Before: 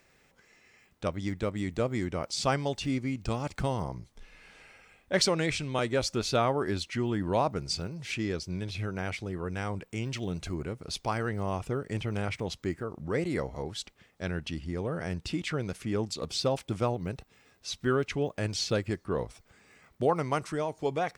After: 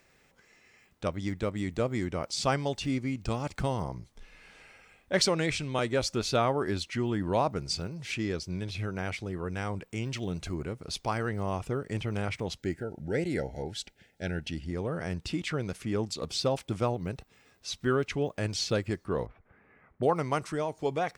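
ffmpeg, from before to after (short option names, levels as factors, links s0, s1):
-filter_complex "[0:a]asettb=1/sr,asplit=3[s0][s1][s2];[s0]atrim=end=12.584[s3];[s1]atrim=start=12.58:end=14.71,asetpts=PTS-STARTPTS,afade=t=in:d=0.004:c=qsin,afade=t=out:st=2.126:d=0.004:c=qsin,asuperstop=centerf=1100:order=20:qfactor=2.6[s4];[s2]atrim=start=14.706[s5];[s3][s4]acrossfade=d=0.004:c1=hsin:c2=qsin[s6];[s6][s5]acrossfade=d=0.004:c1=qsin:c2=hsin,asettb=1/sr,asplit=3[s7][s8][s9];[s7]atrim=end=19.264[s10];[s8]atrim=start=19.26:end=20.03,asetpts=PTS-STARTPTS,afade=t=in:d=0.004:c=qsin,afade=t=out:st=0.766:d=0.004:c=qsin,lowpass=f=2000:w=0.5412,lowpass=f=2000:w=1.3066[s11];[s9]atrim=start=20.026[s12];[s10][s11]acrossfade=d=0.004:c1=hsin:c2=qsin[s13];[s13][s12]acrossfade=d=0.004:c1=qsin:c2=hsin"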